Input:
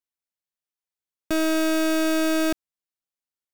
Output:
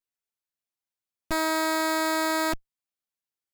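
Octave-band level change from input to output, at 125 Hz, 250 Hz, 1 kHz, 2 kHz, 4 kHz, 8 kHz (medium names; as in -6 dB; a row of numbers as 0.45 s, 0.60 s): no reading, -8.0 dB, +6.5 dB, +0.5 dB, -1.0 dB, -0.5 dB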